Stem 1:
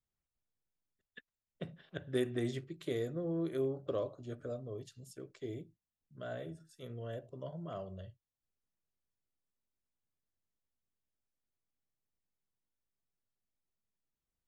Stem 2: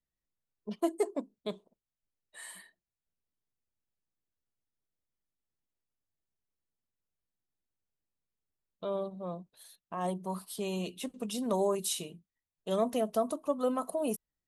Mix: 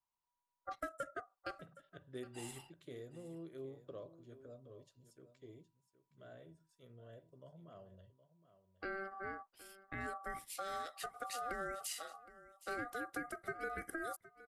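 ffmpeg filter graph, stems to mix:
-filter_complex "[0:a]volume=-13.5dB,asplit=2[a][b];[b]volume=-14dB[c];[1:a]acompressor=threshold=-35dB:ratio=6,aeval=exprs='val(0)*sin(2*PI*970*n/s)':c=same,volume=-1.5dB,asplit=2[d][e];[e]volume=-18dB[f];[c][f]amix=inputs=2:normalize=0,aecho=0:1:767:1[g];[a][d][g]amix=inputs=3:normalize=0"

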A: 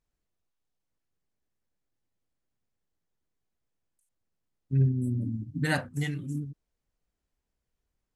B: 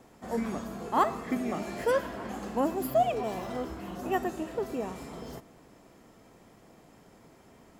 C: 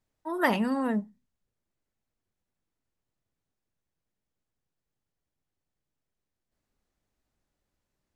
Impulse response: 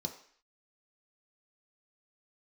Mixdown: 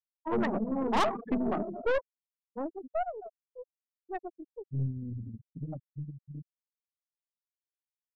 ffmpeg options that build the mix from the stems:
-filter_complex "[0:a]lowpass=1k,volume=-5.5dB[a];[1:a]highpass=f=190:p=1,highshelf=f=4.2k:g=-2,dynaudnorm=f=110:g=5:m=9dB,volume=-1.5dB,afade=t=out:st=1.62:d=0.65:silence=0.266073,afade=t=out:st=4.39:d=0.45:silence=0.375837[b];[2:a]acompressor=threshold=-28dB:ratio=8,bandreject=f=50:t=h:w=6,bandreject=f=100:t=h:w=6,bandreject=f=150:t=h:w=6,bandreject=f=200:t=h:w=6,bandreject=f=250:t=h:w=6,volume=3dB[c];[a][b][c]amix=inputs=3:normalize=0,afftfilt=real='re*gte(hypot(re,im),0.112)':imag='im*gte(hypot(re,im),0.112)':win_size=1024:overlap=0.75,aeval=exprs='(tanh(14.1*val(0)+0.5)-tanh(0.5))/14.1':c=same"

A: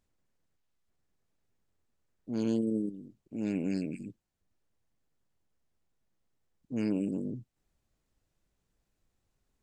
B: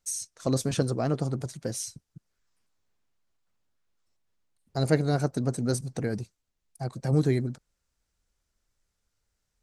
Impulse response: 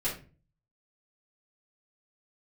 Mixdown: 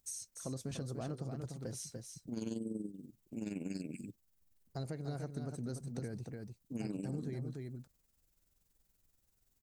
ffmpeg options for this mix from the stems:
-filter_complex "[0:a]aemphasis=mode=production:type=75fm,tremolo=f=21:d=0.621,volume=-2dB[a];[1:a]alimiter=limit=-18dB:level=0:latency=1:release=207,volume=-10dB,asplit=2[b][c];[c]volume=-7dB,aecho=0:1:293:1[d];[a][b][d]amix=inputs=3:normalize=0,lowshelf=f=240:g=4.5,acompressor=threshold=-39dB:ratio=2.5"

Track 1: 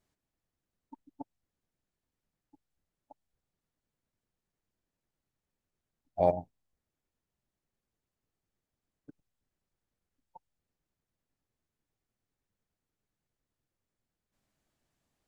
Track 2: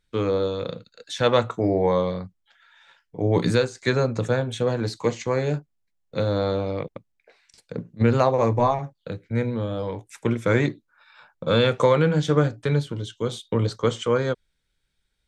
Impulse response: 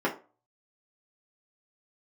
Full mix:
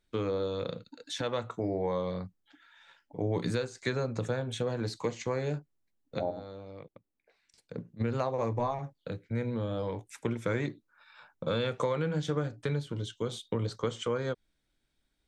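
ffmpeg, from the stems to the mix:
-filter_complex "[0:a]lowpass=1.5k,equalizer=f=280:t=o:w=1.1:g=7.5,volume=-7.5dB,asplit=3[a][b][c];[b]volume=-24dB[d];[1:a]volume=-4dB[e];[c]apad=whole_len=673732[f];[e][f]sidechaincompress=threshold=-44dB:ratio=5:attack=8.7:release=1390[g];[2:a]atrim=start_sample=2205[h];[d][h]afir=irnorm=-1:irlink=0[i];[a][g][i]amix=inputs=3:normalize=0,acompressor=threshold=-29dB:ratio=3"

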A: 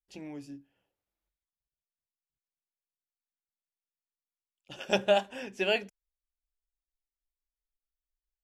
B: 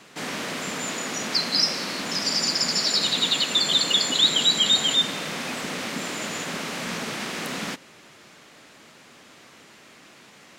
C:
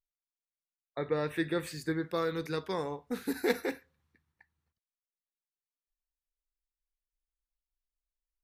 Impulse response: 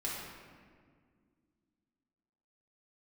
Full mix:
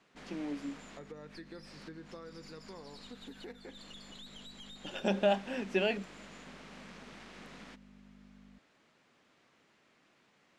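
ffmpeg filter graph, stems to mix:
-filter_complex "[0:a]alimiter=limit=-20.5dB:level=0:latency=1:release=84,aeval=exprs='val(0)+0.00224*(sin(2*PI*50*n/s)+sin(2*PI*2*50*n/s)/2+sin(2*PI*3*50*n/s)/3+sin(2*PI*4*50*n/s)/4+sin(2*PI*5*50*n/s)/5)':c=same,lowshelf=f=150:t=q:w=3:g=-10,adelay=150,volume=1dB[a];[1:a]aeval=exprs='(tanh(11.2*val(0)+0.65)-tanh(0.65))/11.2':c=same,volume=-14dB[b];[2:a]volume=-6.5dB,asplit=2[c][d];[d]apad=whole_len=466617[e];[b][e]sidechaincompress=threshold=-41dB:ratio=8:attack=11:release=199[f];[f][c]amix=inputs=2:normalize=0,lowpass=10k,acompressor=threshold=-46dB:ratio=5,volume=0dB[g];[a][g]amix=inputs=2:normalize=0,highshelf=f=5.2k:g=-10"

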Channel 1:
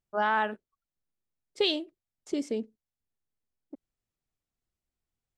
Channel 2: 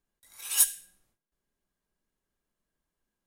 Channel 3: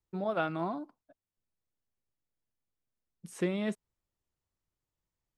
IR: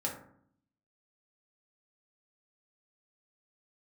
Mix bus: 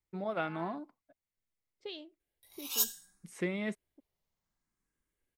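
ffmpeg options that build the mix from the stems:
-filter_complex "[0:a]lowpass=4.8k,adelay=250,volume=-17dB[a];[1:a]asplit=2[b][c];[c]afreqshift=0.65[d];[b][d]amix=inputs=2:normalize=1,adelay=2200,volume=-1dB[e];[2:a]equalizer=f=2.1k:w=4.9:g=9.5,volume=-3.5dB,asplit=2[f][g];[g]apad=whole_len=247879[h];[a][h]sidechaincompress=threshold=-39dB:ratio=8:attack=16:release=309[i];[i][e][f]amix=inputs=3:normalize=0"

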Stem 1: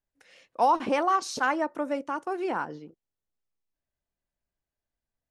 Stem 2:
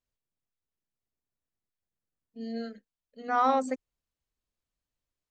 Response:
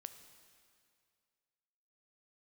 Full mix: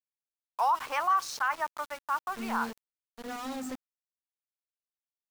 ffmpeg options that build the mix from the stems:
-filter_complex "[0:a]highpass=f=1.1k:t=q:w=2.1,acrusher=bits=7:mix=0:aa=0.000001,volume=-2.5dB[a];[1:a]lowshelf=f=160:g=9,acrossover=split=260|3000[b][c][d];[c]acompressor=threshold=-37dB:ratio=6[e];[b][e][d]amix=inputs=3:normalize=0,volume=34dB,asoftclip=hard,volume=-34dB,volume=0.5dB[f];[a][f]amix=inputs=2:normalize=0,aeval=exprs='val(0)*gte(abs(val(0)),0.0112)':c=same,alimiter=limit=-18.5dB:level=0:latency=1:release=39"

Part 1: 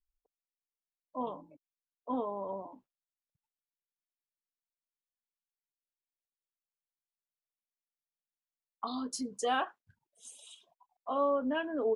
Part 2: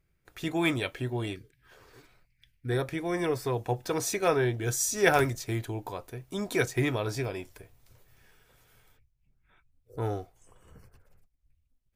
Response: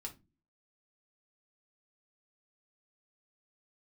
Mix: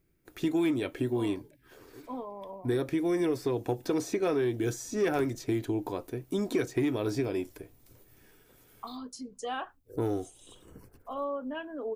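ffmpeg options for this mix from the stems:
-filter_complex "[0:a]volume=-5dB,asplit=2[a][b];[b]volume=-20dB[c];[1:a]equalizer=f=300:w=1.2:g=13.5,asoftclip=type=tanh:threshold=-8dB,volume=-2dB[d];[2:a]atrim=start_sample=2205[e];[c][e]afir=irnorm=-1:irlink=0[f];[a][d][f]amix=inputs=3:normalize=0,highshelf=f=8.8k:g=10.5,acrossover=split=2200|6600[g][h][i];[g]acompressor=threshold=-26dB:ratio=4[j];[h]acompressor=threshold=-44dB:ratio=4[k];[i]acompressor=threshold=-57dB:ratio=4[l];[j][k][l]amix=inputs=3:normalize=0"

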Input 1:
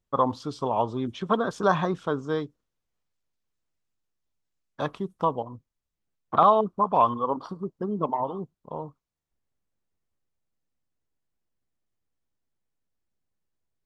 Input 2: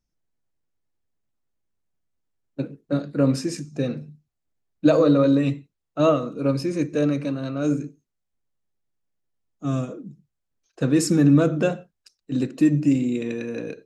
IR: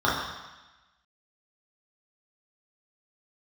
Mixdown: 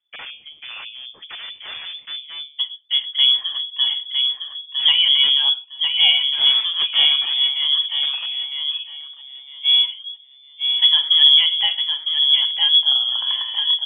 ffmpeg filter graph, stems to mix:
-filter_complex "[0:a]bandreject=f=50.03:t=h:w=4,bandreject=f=100.06:t=h:w=4,bandreject=f=150.09:t=h:w=4,bandreject=f=200.12:t=h:w=4,bandreject=f=250.15:t=h:w=4,bandreject=f=300.18:t=h:w=4,bandreject=f=350.21:t=h:w=4,bandreject=f=400.24:t=h:w=4,bandreject=f=450.27:t=h:w=4,bandreject=f=500.3:t=h:w=4,bandreject=f=550.33:t=h:w=4,bandreject=f=600.36:t=h:w=4,bandreject=f=650.39:t=h:w=4,bandreject=f=700.42:t=h:w=4,bandreject=f=750.45:t=h:w=4,bandreject=f=800.48:t=h:w=4,bandreject=f=850.51:t=h:w=4,bandreject=f=900.54:t=h:w=4,bandreject=f=950.57:t=h:w=4,bandreject=f=1.0006k:t=h:w=4,bandreject=f=1.05063k:t=h:w=4,bandreject=f=1.10066k:t=h:w=4,bandreject=f=1.15069k:t=h:w=4,bandreject=f=1.20072k:t=h:w=4,bandreject=f=1.25075k:t=h:w=4,aeval=exprs='0.0631*(abs(mod(val(0)/0.0631+3,4)-2)-1)':c=same,volume=-5dB[a];[1:a]volume=2.5dB,asplit=2[b][c];[c]volume=-5.5dB,aecho=0:1:958|1916|2874|3832:1|0.23|0.0529|0.0122[d];[a][b][d]amix=inputs=3:normalize=0,asubboost=boost=11:cutoff=94,lowpass=f=3k:t=q:w=0.5098,lowpass=f=3k:t=q:w=0.6013,lowpass=f=3k:t=q:w=0.9,lowpass=f=3k:t=q:w=2.563,afreqshift=-3500"

